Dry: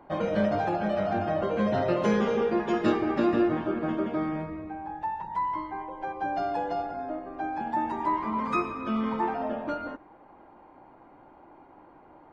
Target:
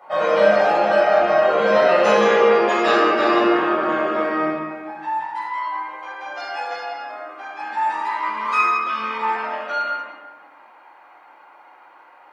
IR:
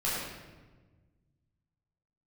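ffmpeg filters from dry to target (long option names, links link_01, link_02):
-filter_complex "[0:a]asetnsamples=nb_out_samples=441:pad=0,asendcmd='4.57 highpass f 1500',highpass=700[link_01];[1:a]atrim=start_sample=2205[link_02];[link_01][link_02]afir=irnorm=-1:irlink=0,volume=8dB"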